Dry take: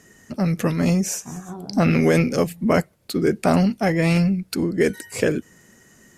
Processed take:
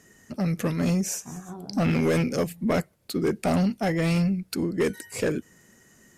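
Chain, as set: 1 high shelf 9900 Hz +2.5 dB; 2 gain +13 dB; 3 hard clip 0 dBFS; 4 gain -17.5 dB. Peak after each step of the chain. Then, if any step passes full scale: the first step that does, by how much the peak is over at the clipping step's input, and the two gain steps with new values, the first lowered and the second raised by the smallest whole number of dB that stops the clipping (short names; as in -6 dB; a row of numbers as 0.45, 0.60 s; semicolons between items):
-4.0, +9.0, 0.0, -17.5 dBFS; step 2, 9.0 dB; step 2 +4 dB, step 4 -8.5 dB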